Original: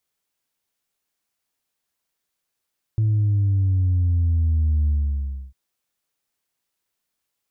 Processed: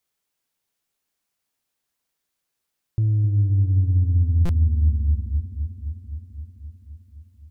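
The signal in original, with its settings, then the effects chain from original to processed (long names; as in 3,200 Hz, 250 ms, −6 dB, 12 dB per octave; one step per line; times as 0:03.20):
bass drop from 110 Hz, over 2.55 s, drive 0.5 dB, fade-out 0.65 s, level −16.5 dB
on a send: delay with a low-pass on its return 260 ms, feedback 73%, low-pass 440 Hz, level −9 dB
on the sum: buffer that repeats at 0:04.45, samples 256, times 6
highs frequency-modulated by the lows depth 0.18 ms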